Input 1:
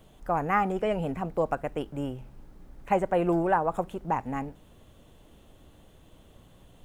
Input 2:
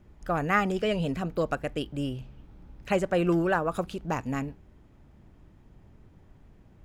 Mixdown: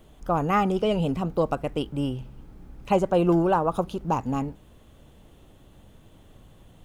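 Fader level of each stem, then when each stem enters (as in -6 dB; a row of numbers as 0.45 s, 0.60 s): +0.5 dB, -1.5 dB; 0.00 s, 0.00 s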